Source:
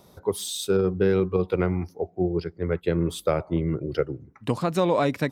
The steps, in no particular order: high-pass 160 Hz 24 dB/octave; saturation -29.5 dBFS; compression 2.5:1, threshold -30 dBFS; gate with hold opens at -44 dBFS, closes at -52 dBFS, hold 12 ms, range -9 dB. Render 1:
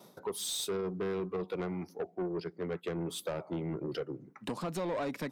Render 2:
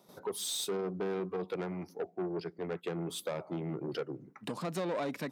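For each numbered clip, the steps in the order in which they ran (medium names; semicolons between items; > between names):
gate with hold > compression > high-pass > saturation; compression > saturation > high-pass > gate with hold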